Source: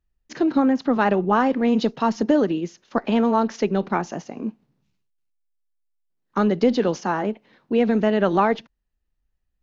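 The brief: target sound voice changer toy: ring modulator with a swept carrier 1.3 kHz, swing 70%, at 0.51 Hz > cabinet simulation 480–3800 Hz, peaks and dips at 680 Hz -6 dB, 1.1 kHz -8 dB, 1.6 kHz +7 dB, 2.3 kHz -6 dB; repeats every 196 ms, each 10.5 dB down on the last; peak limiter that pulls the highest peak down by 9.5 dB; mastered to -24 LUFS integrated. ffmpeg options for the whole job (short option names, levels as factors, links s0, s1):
-af "alimiter=limit=0.158:level=0:latency=1,aecho=1:1:196|392|588:0.299|0.0896|0.0269,aeval=exprs='val(0)*sin(2*PI*1300*n/s+1300*0.7/0.51*sin(2*PI*0.51*n/s))':c=same,highpass=480,equalizer=f=680:t=q:w=4:g=-6,equalizer=f=1100:t=q:w=4:g=-8,equalizer=f=1600:t=q:w=4:g=7,equalizer=f=2300:t=q:w=4:g=-6,lowpass=f=3800:w=0.5412,lowpass=f=3800:w=1.3066,volume=1.5"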